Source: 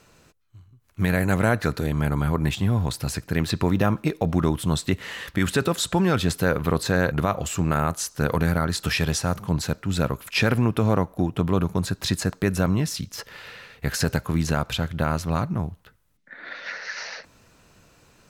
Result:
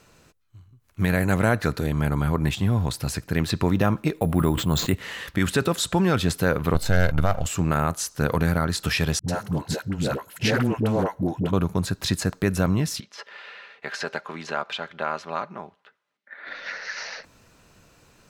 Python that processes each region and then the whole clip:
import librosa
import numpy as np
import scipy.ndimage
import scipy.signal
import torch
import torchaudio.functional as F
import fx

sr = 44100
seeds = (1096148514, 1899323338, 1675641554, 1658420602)

y = fx.chain(x, sr, fx.high_shelf(hz=5200.0, db=-7.0),
    fx.resample_bad(factor=4, down='filtered', up='hold'),
    fx.sustainer(db_per_s=70.0), at=(4.15, 4.95))
y = fx.chain(y, sr, fx.halfwave_gain(db=-12.0),
    fx.low_shelf(hz=79.0, db=9.0),
    fx.comb(ms=1.4, depth=0.41), at=(6.74, 7.46))
y = fx.chain(y, sr, fx.notch_comb(f0_hz=1200.0),
    fx.dispersion(late='highs', ms=93.0, hz=430.0),
    fx.doppler_dist(depth_ms=0.2), at=(9.19, 11.53))
y = fx.chain(y, sr, fx.bandpass_edges(low_hz=510.0, high_hz=3600.0),
    fx.comb(ms=5.0, depth=0.35), at=(13.0, 16.47))